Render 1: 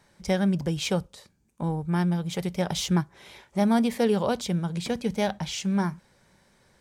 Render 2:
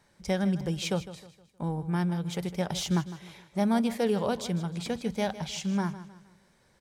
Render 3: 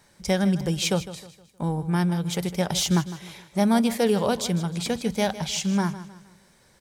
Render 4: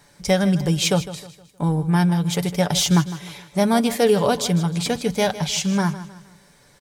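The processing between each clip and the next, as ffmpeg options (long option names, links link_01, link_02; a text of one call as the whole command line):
ffmpeg -i in.wav -af "aecho=1:1:156|312|468|624:0.188|0.0716|0.0272|0.0103,volume=-3.5dB" out.wav
ffmpeg -i in.wav -af "highshelf=frequency=4600:gain=7,volume=5dB" out.wav
ffmpeg -i in.wav -af "aecho=1:1:6.9:0.41,volume=4dB" out.wav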